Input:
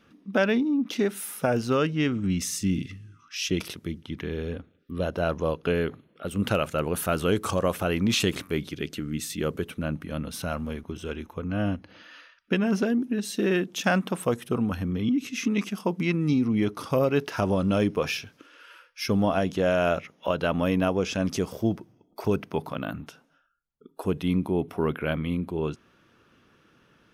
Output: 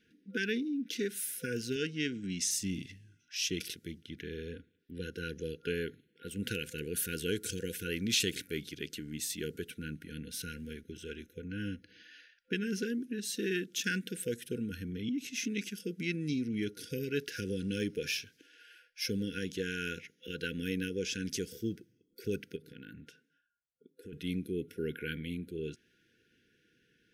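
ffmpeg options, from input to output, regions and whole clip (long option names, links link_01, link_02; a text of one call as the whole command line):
ffmpeg -i in.wav -filter_complex "[0:a]asettb=1/sr,asplit=3[link_01][link_02][link_03];[link_01]atrim=end=1.764[link_04];[link_02]atrim=start=1.76:end=2.51,asetpts=PTS-STARTPTS,afade=type=in:duration=0.004:curve=qsin,afade=type=out:start_time=0.746:duration=0.004:curve=qsin,highpass=130,lowpass=7400,highshelf=frequency=5600:gain=6[link_05];[link_03]atrim=start=2.506[link_06];[link_04][link_05]acrossfade=duration=0.004:curve1=hsin:curve2=qsin[link_07];[link_07][link_06]acrossfade=duration=0.004:curve1=qsin:curve2=hsin,asettb=1/sr,asplit=3[link_08][link_09][link_10];[link_08]atrim=end=22.564[link_11];[link_09]atrim=start=22.56:end=24.13,asetpts=PTS-STARTPTS,afade=type=in:duration=0.004:curve=qsin,afade=type=out:start_time=1.566:duration=0.004:curve=qsin,highpass=60,highshelf=frequency=4500:gain=-7,acompressor=threshold=-33dB:ratio=5:attack=3.2:release=140:knee=1:detection=peak[link_12];[link_10]atrim=start=24.126[link_13];[link_11][link_12]acrossfade=duration=0.004:curve1=hsin:curve2=qsin[link_14];[link_14][link_13]acrossfade=duration=0.004:curve1=qsin:curve2=hsin,lowshelf=frequency=340:gain=-5.5,afftfilt=real='re*(1-between(b*sr/4096,510,1400))':imag='im*(1-between(b*sr/4096,510,1400))':win_size=4096:overlap=0.75,adynamicequalizer=threshold=0.00562:dfrequency=3200:dqfactor=0.7:tfrequency=3200:tqfactor=0.7:attack=5:release=100:ratio=0.375:range=3:mode=boostabove:tftype=highshelf,volume=-7dB" out.wav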